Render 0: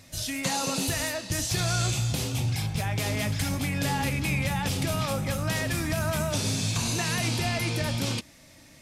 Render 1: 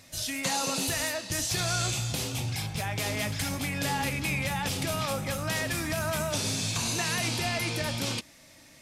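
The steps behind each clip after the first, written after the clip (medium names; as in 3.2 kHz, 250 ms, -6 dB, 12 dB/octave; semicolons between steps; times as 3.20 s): bass shelf 270 Hz -6.5 dB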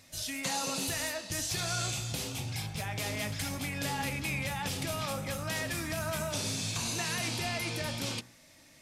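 de-hum 60.28 Hz, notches 31; trim -4 dB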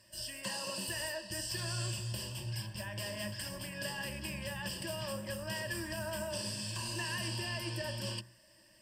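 Chebyshev shaper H 2 -20 dB, 4 -30 dB, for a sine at -21 dBFS; rippled EQ curve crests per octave 1.3, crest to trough 17 dB; trim -8 dB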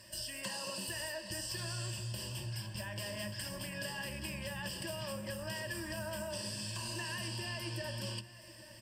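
compression 2.5:1, threshold -50 dBFS, peak gain reduction 11 dB; delay 822 ms -17 dB; trim +7.5 dB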